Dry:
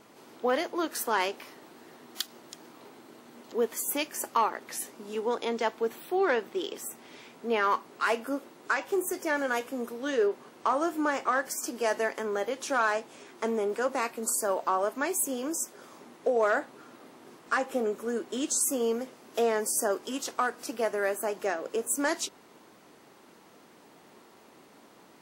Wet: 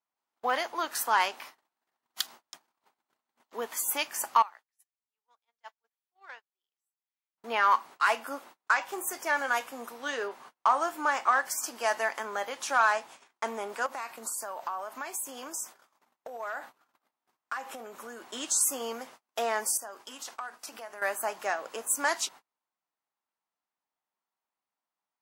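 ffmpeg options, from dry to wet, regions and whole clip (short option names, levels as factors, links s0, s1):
-filter_complex "[0:a]asettb=1/sr,asplit=3[s0][s1][s2];[s0]atrim=end=4.424[s3];[s1]atrim=start=4.42:end=7.38,asetpts=PTS-STARTPTS,afade=t=in:d=0.004:c=qsin,afade=t=out:st=2.956:d=0.004:c=qsin,lowpass=f=1200:p=1,aderivative[s4];[s2]atrim=start=7.376[s5];[s3][s4]acrossfade=d=0.004:c1=hsin:c2=qsin[s6];[s6][s5]acrossfade=d=0.004:c1=qsin:c2=hsin,asettb=1/sr,asplit=3[s7][s8][s9];[s7]atrim=end=13.864[s10];[s8]atrim=start=13.86:end=18.22,asetpts=PTS-STARTPTS,afade=t=in:d=0.004:c=qsin,afade=t=out:st=4.356:d=0.004:c=qsin,acompressor=threshold=0.0251:ratio=12:attack=3.2:release=140:knee=1:detection=peak,aeval=exprs='val(0)+0.000355*sin(2*PI*13000*n/s)':c=same[s11];[s9]atrim=start=18.216[s12];[s10][s11]acrossfade=d=0.004:c1=hsin:c2=qsin[s13];[s13][s12]acrossfade=d=0.004:c1=qsin:c2=hsin,asettb=1/sr,asplit=3[s14][s15][s16];[s14]atrim=end=19.774[s17];[s15]atrim=start=19.77:end=21.02,asetpts=PTS-STARTPTS,afade=t=in:d=0.004:c=qsin,afade=t=out:st=1.246:d=0.004:c=qsin,bandreject=f=60:t=h:w=6,bandreject=f=120:t=h:w=6,bandreject=f=180:t=h:w=6,bandreject=f=240:t=h:w=6,bandreject=f=300:t=h:w=6,bandreject=f=360:t=h:w=6,bandreject=f=420:t=h:w=6,acompressor=threshold=0.0126:ratio=5:attack=3.2:release=140:knee=1:detection=peak[s18];[s16]atrim=start=21.016[s19];[s17][s18]acrossfade=d=0.004:c1=hsin:c2=qsin[s20];[s20][s19]acrossfade=d=0.004:c1=qsin:c2=hsin,agate=range=0.0141:threshold=0.00501:ratio=16:detection=peak,lowshelf=f=590:t=q:w=1.5:g=-10.5,volume=1.19"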